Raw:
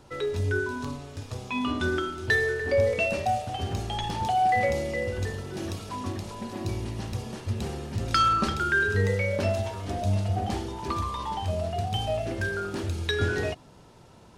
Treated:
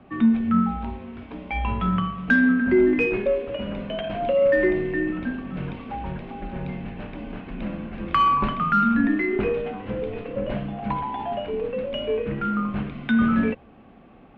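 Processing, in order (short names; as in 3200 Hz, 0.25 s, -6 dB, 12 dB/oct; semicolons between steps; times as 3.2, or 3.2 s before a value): small resonant body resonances 220/420 Hz, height 9 dB, ringing for 45 ms; mistuned SSB -190 Hz 290–3000 Hz; added harmonics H 6 -37 dB, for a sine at -12 dBFS; gain +3.5 dB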